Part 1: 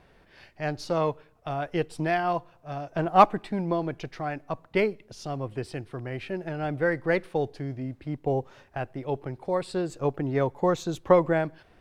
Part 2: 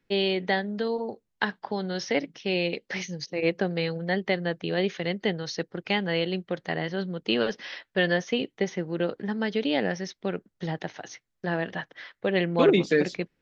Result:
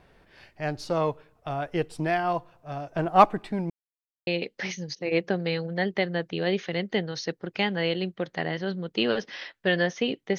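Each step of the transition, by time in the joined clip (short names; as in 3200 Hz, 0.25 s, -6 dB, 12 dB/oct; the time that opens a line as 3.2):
part 1
3.7–4.27 mute
4.27 switch to part 2 from 2.58 s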